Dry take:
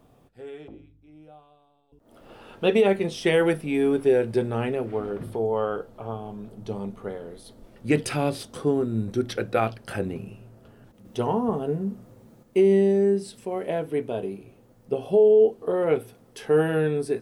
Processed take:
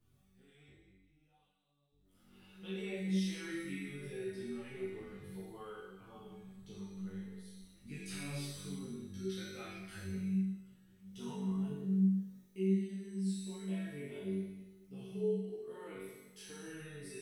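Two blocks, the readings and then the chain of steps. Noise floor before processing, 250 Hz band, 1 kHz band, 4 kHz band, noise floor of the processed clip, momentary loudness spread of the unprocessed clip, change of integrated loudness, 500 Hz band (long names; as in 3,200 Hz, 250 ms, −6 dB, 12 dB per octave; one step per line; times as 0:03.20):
−58 dBFS, −10.0 dB, −24.5 dB, −12.0 dB, −71 dBFS, 17 LU, −15.5 dB, −22.0 dB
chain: guitar amp tone stack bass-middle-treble 6-0-2
hum removal 56.54 Hz, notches 11
in parallel at −2.5 dB: output level in coarse steps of 20 dB
on the sum: brickwall limiter −39 dBFS, peak gain reduction 12.5 dB
tuned comb filter 64 Hz, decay 1 s, harmonics all, mix 90%
on a send: flutter between parallel walls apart 3.6 metres, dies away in 1.1 s
on the sum: string-ensemble chorus
level +14 dB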